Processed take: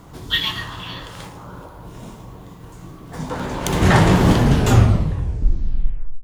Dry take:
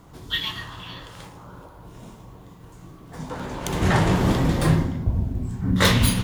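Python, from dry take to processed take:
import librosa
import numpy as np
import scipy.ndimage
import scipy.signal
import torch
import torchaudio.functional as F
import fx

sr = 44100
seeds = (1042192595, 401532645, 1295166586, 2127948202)

y = fx.tape_stop_end(x, sr, length_s=2.02)
y = fx.echo_bbd(y, sr, ms=146, stages=1024, feedback_pct=51, wet_db=-21.5)
y = F.gain(torch.from_numpy(y), 6.0).numpy()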